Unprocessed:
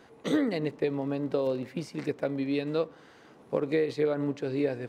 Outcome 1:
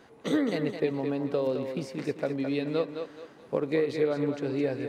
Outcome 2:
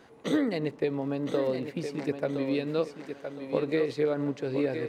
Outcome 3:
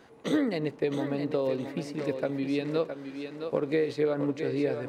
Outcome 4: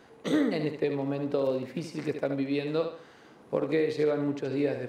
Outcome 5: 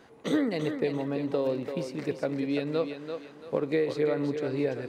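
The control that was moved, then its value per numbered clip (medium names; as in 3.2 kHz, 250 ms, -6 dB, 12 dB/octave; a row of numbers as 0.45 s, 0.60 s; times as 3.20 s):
thinning echo, time: 213 ms, 1015 ms, 664 ms, 73 ms, 339 ms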